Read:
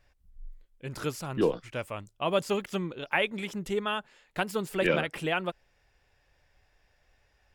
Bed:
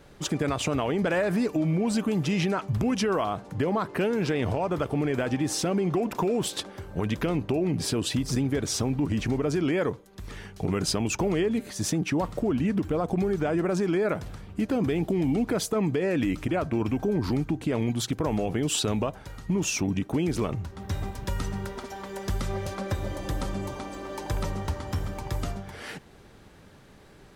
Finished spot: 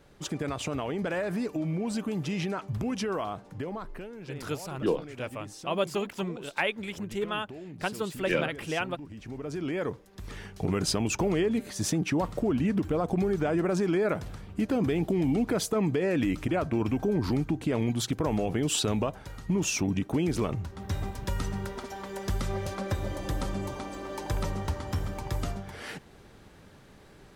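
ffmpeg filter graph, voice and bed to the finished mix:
ffmpeg -i stem1.wav -i stem2.wav -filter_complex "[0:a]adelay=3450,volume=-1.5dB[link_01];[1:a]volume=10.5dB,afade=type=out:start_time=3.27:duration=0.8:silence=0.266073,afade=type=in:start_time=9.19:duration=1.13:silence=0.158489[link_02];[link_01][link_02]amix=inputs=2:normalize=0" out.wav

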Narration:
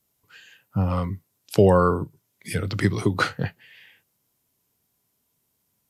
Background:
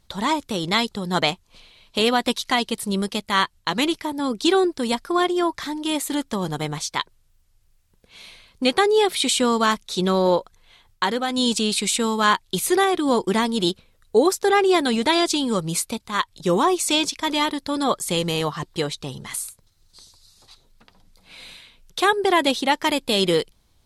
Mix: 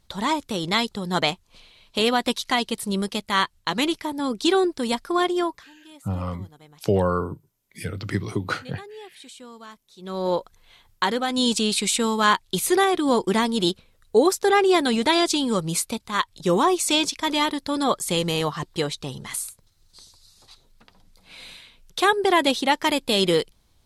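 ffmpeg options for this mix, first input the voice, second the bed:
ffmpeg -i stem1.wav -i stem2.wav -filter_complex "[0:a]adelay=5300,volume=-4.5dB[link_01];[1:a]volume=21.5dB,afade=type=out:start_time=5.4:duration=0.24:silence=0.0794328,afade=type=in:start_time=10:duration=0.53:silence=0.0707946[link_02];[link_01][link_02]amix=inputs=2:normalize=0" out.wav

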